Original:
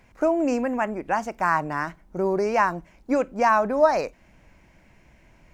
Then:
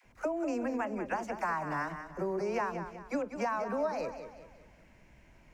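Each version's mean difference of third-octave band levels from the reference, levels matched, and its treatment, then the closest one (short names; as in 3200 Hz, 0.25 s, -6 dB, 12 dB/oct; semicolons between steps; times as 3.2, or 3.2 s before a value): 6.0 dB: dispersion lows, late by 48 ms, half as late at 490 Hz; compressor 6:1, threshold -25 dBFS, peak gain reduction 12.5 dB; warbling echo 0.191 s, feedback 40%, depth 87 cents, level -9.5 dB; gain -5 dB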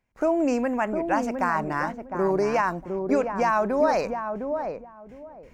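3.0 dB: gate with hold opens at -44 dBFS; limiter -13.5 dBFS, peak gain reduction 6 dB; on a send: darkening echo 0.708 s, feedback 23%, low-pass 800 Hz, level -4.5 dB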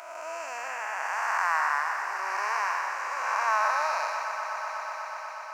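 14.0 dB: time blur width 0.477 s; HPF 990 Hz 24 dB/oct; swelling echo 0.122 s, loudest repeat 5, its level -14.5 dB; gain +8 dB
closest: second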